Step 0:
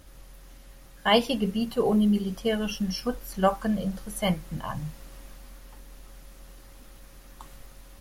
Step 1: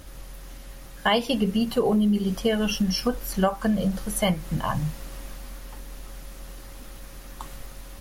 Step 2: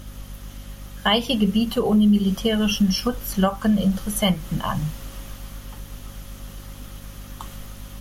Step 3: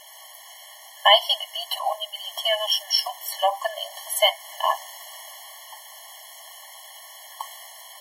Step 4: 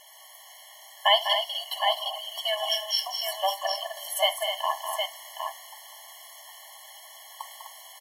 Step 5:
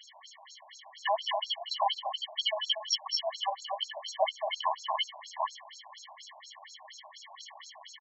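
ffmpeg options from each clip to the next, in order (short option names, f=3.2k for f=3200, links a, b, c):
-af "acompressor=threshold=-27dB:ratio=4,volume=7.5dB"
-af "equalizer=f=200:t=o:w=0.33:g=6,equalizer=f=1.25k:t=o:w=0.33:g=4,equalizer=f=3.15k:t=o:w=0.33:g=7,equalizer=f=6.3k:t=o:w=0.33:g=4,equalizer=f=12.5k:t=o:w=0.33:g=5,aeval=exprs='val(0)+0.0126*(sin(2*PI*50*n/s)+sin(2*PI*2*50*n/s)/2+sin(2*PI*3*50*n/s)/3+sin(2*PI*4*50*n/s)/4+sin(2*PI*5*50*n/s)/5)':c=same"
-af "afftfilt=real='re*eq(mod(floor(b*sr/1024/570),2),1)':imag='im*eq(mod(floor(b*sr/1024/570),2),1)':win_size=1024:overlap=0.75,volume=6dB"
-af "aecho=1:1:72|200|253|763:0.112|0.398|0.376|0.501,volume=-5.5dB"
-filter_complex "[0:a]acompressor=threshold=-28dB:ratio=3,asplit=2[a][b];[b]adelay=100,highpass=300,lowpass=3.4k,asoftclip=type=hard:threshold=-25.5dB,volume=-27dB[c];[a][c]amix=inputs=2:normalize=0,afftfilt=real='re*between(b*sr/1024,710*pow(5500/710,0.5+0.5*sin(2*PI*4.2*pts/sr))/1.41,710*pow(5500/710,0.5+0.5*sin(2*PI*4.2*pts/sr))*1.41)':imag='im*between(b*sr/1024,710*pow(5500/710,0.5+0.5*sin(2*PI*4.2*pts/sr))/1.41,710*pow(5500/710,0.5+0.5*sin(2*PI*4.2*pts/sr))*1.41)':win_size=1024:overlap=0.75,volume=5dB"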